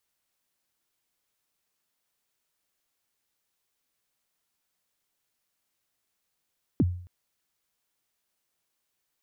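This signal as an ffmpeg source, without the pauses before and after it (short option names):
-f lavfi -i "aevalsrc='0.158*pow(10,-3*t/0.53)*sin(2*PI*(350*0.038/log(89/350)*(exp(log(89/350)*min(t,0.038)/0.038)-1)+89*max(t-0.038,0)))':d=0.27:s=44100"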